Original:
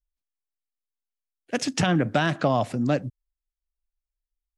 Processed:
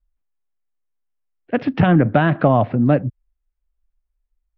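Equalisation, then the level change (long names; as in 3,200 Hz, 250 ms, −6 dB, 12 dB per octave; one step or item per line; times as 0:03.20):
Gaussian smoothing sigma 3.3 samples
high-frequency loss of the air 93 metres
low-shelf EQ 86 Hz +8 dB
+7.5 dB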